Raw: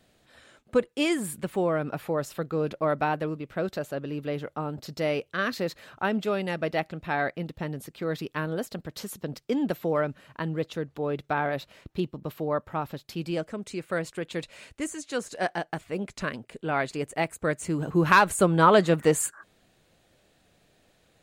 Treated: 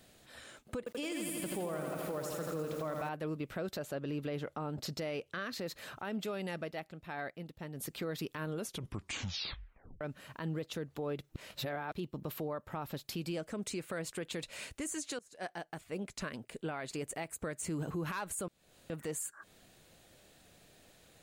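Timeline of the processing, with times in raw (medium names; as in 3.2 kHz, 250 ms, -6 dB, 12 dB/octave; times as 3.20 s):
0.78–3.09 s: bit-crushed delay 83 ms, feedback 80%, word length 8-bit, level -6 dB
3.77–5.66 s: treble shelf 11 kHz -10.5 dB
6.57–7.92 s: dip -13 dB, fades 0.19 s
8.45 s: tape stop 1.56 s
11.29–11.93 s: reverse
15.19–17.64 s: fade in linear, from -21 dB
18.48–18.90 s: room tone
whole clip: treble shelf 5.8 kHz +8 dB; compression 6:1, threshold -34 dBFS; peak limiter -30.5 dBFS; trim +1 dB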